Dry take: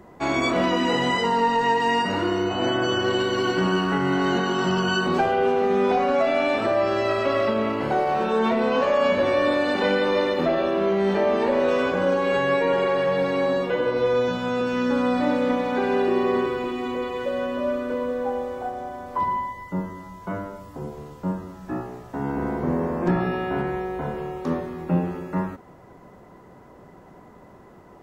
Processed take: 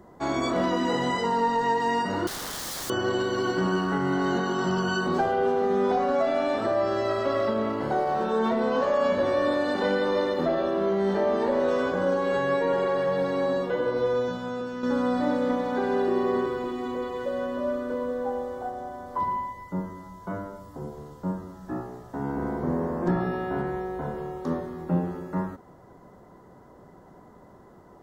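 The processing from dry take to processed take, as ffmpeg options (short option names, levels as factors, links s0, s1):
-filter_complex "[0:a]asettb=1/sr,asplit=3[s0][s1][s2];[s0]atrim=end=2.274[s3];[s1]atrim=start=2.27:end=2.9,asetpts=PTS-STARTPTS,afade=t=in:d=0.004:c=qsin,afade=t=out:st=0.626:d=0.004:c=qsin,aeval=exprs='(mod(18.8*val(0)+1,2)-1)/18.8':c=same[s4];[s2]atrim=start=2.896[s5];[s3][s4]acrossfade=d=0.004:c1=hsin:c2=qsin[s6];[s6][s5]acrossfade=d=0.004:c1=qsin:c2=hsin,asplit=2[s7][s8];[s7]atrim=end=14.83,asetpts=PTS-STARTPTS,afade=t=out:st=13.99:d=0.84:silence=0.421697[s9];[s8]atrim=start=14.83,asetpts=PTS-STARTPTS,afade=t=in:d=0.004:c=hsin:silence=0.421697[s10];[s9][s10]concat=n=2:v=0:a=1,equalizer=f=2500:t=o:w=0.47:g=-11.5,volume=0.708"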